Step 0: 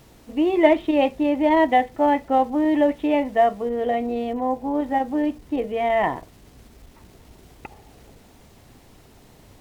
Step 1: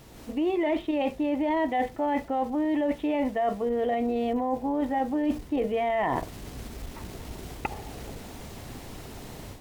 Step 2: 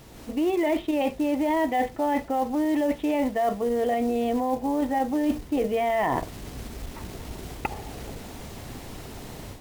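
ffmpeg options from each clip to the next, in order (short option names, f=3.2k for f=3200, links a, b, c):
-af "dynaudnorm=f=130:g=3:m=9dB,alimiter=limit=-10.5dB:level=0:latency=1:release=44,areverse,acompressor=threshold=-24dB:ratio=6,areverse"
-af "acrusher=bits=6:mode=log:mix=0:aa=0.000001,volume=2dB"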